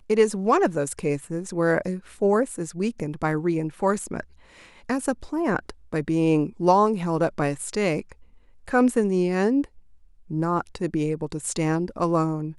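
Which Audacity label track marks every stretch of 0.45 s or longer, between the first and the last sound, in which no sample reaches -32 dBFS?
4.210000	4.890000	silence
8.120000	8.680000	silence
9.640000	10.310000	silence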